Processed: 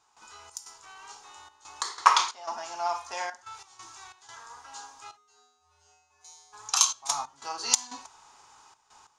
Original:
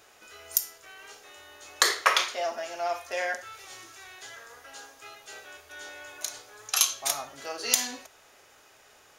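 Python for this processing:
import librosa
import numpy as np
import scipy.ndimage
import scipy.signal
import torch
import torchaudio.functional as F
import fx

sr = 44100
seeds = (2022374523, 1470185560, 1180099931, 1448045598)

y = fx.curve_eq(x, sr, hz=(180.0, 420.0, 600.0, 910.0, 1800.0, 3200.0, 4700.0, 8000.0, 13000.0), db=(0, -6, -11, 13, -6, -2, 3, 4, -21))
y = fx.step_gate(y, sr, bpm=91, pattern='.xx.xxxxx.x', floor_db=-12.0, edge_ms=4.5)
y = fx.comb_fb(y, sr, f0_hz=83.0, decay_s=0.92, harmonics='odd', damping=0.0, mix_pct=100, at=(5.16, 6.52), fade=0.02)
y = y * librosa.db_to_amplitude(-1.0)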